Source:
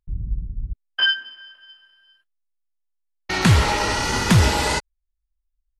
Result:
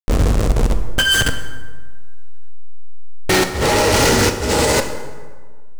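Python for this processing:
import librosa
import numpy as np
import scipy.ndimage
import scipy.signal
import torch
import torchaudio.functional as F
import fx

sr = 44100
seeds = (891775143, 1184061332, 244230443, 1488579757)

y = fx.delta_hold(x, sr, step_db=-28.5)
y = fx.graphic_eq(y, sr, hz=(125, 250, 500, 1000, 8000), db=(4, 4, 10, -4, 8))
y = fx.over_compress(y, sr, threshold_db=-22.0, ratio=-0.5)
y = fx.leveller(y, sr, passes=5)
y = fx.rev_plate(y, sr, seeds[0], rt60_s=1.5, hf_ratio=0.6, predelay_ms=0, drr_db=6.5)
y = fx.doppler_dist(y, sr, depth_ms=0.23)
y = y * librosa.db_to_amplitude(-4.5)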